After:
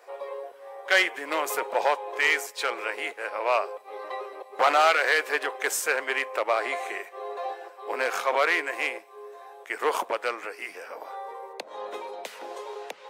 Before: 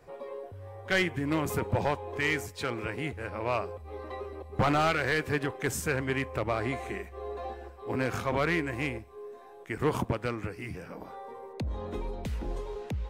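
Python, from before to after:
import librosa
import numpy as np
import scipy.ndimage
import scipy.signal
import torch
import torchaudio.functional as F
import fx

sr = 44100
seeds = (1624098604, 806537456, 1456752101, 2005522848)

y = scipy.signal.sosfilt(scipy.signal.butter(4, 500.0, 'highpass', fs=sr, output='sos'), x)
y = F.gain(torch.from_numpy(y), 7.0).numpy()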